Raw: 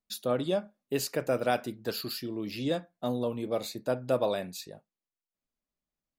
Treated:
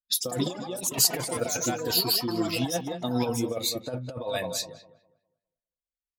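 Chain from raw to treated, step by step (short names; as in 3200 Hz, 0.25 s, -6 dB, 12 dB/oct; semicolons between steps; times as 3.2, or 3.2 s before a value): per-bin expansion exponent 1.5; darkening echo 0.203 s, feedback 27%, low-pass 4000 Hz, level -14 dB; negative-ratio compressor -34 dBFS, ratio -0.5; notch comb 200 Hz; echoes that change speed 0.134 s, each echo +6 st, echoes 2, each echo -6 dB; low-pass opened by the level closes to 2100 Hz, open at -35 dBFS; high shelf 3500 Hz +9 dB; gain +7 dB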